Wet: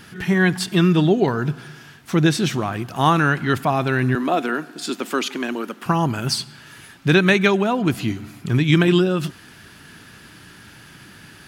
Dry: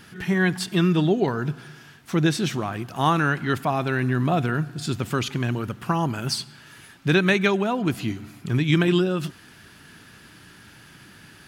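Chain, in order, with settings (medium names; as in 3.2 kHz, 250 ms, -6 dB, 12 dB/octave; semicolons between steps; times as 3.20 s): 4.15–5.86 s: steep high-pass 230 Hz 36 dB/octave; trim +4 dB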